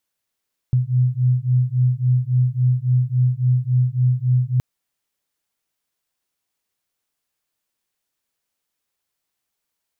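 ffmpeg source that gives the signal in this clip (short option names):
-f lavfi -i "aevalsrc='0.126*(sin(2*PI*124*t)+sin(2*PI*127.6*t))':d=3.87:s=44100"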